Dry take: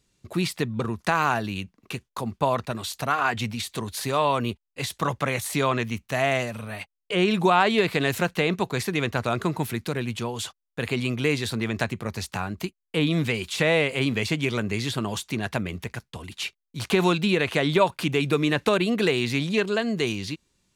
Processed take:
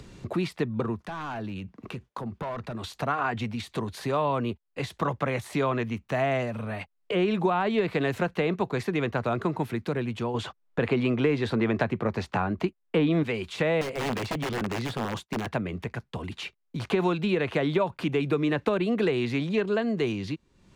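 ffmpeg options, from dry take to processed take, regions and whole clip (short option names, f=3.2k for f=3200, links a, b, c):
-filter_complex "[0:a]asettb=1/sr,asplit=3[a][b][c];[a]atrim=end=1.004[d];[b]atrim=start=1:end=2.84,asetpts=PTS-STARTPTS,afade=t=in:d=0.004:c=qsin,afade=t=out:st=1.836:d=0.004:c=qsin,highpass=44,asoftclip=type=hard:threshold=-23.5dB,acompressor=threshold=-43dB:ratio=2.5:attack=3.2:release=140:knee=1:detection=peak[e];[c]atrim=start=2.836[f];[d][e]acrossfade=d=0.004:c1=hsin:c2=qsin[g];[g][f]acrossfade=d=0.004:c1=qsin:c2=hsin,asettb=1/sr,asplit=3[h][i][j];[h]atrim=end=10.344[k];[i]atrim=start=10.34:end=13.23,asetpts=PTS-STARTPTS,afade=t=in:d=0.004:c=qsin,afade=t=out:st=2.886:d=0.004:c=qsin,lowpass=f=2.8k:p=1,acontrast=83[l];[j]atrim=start=13.226[m];[k][l]acrossfade=d=0.004:c1=hsin:c2=qsin[n];[n][m]acrossfade=d=0.004:c1=qsin:c2=hsin,asettb=1/sr,asplit=3[o][p][q];[o]atrim=end=13.814[r];[p]atrim=start=13.81:end=15.49,asetpts=PTS-STARTPTS,afade=t=in:d=0.004:c=qsin,afade=t=out:st=1.676:d=0.004:c=qsin,agate=range=-33dB:threshold=-32dB:ratio=3:release=100:detection=peak,aeval=exprs='(mod(10.6*val(0)+1,2)-1)/10.6':c=same[s];[q]atrim=start=15.486[t];[r][s]acrossfade=d=0.004:c1=hsin:c2=qsin[u];[u][t]acrossfade=d=0.004:c1=qsin:c2=hsin,acompressor=mode=upward:threshold=-26dB:ratio=2.5,lowpass=f=1.2k:p=1,acrossover=split=88|260[v][w][x];[v]acompressor=threshold=-51dB:ratio=4[y];[w]acompressor=threshold=-34dB:ratio=4[z];[x]acompressor=threshold=-24dB:ratio=4[aa];[y][z][aa]amix=inputs=3:normalize=0,volume=1.5dB"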